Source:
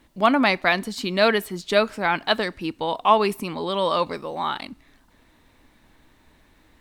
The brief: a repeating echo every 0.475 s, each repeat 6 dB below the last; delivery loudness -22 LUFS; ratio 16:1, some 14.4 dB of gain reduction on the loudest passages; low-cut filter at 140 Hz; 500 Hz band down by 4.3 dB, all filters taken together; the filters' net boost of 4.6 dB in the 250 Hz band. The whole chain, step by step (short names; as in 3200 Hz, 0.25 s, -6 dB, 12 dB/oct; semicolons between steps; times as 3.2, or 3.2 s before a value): HPF 140 Hz; bell 250 Hz +8 dB; bell 500 Hz -8 dB; compressor 16:1, threshold -27 dBFS; feedback echo 0.475 s, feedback 50%, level -6 dB; gain +9.5 dB